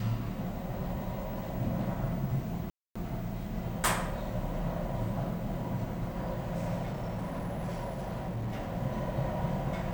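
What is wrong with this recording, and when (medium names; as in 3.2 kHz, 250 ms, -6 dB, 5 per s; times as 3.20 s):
2.70–2.96 s: dropout 255 ms
6.84–8.70 s: clipped -31 dBFS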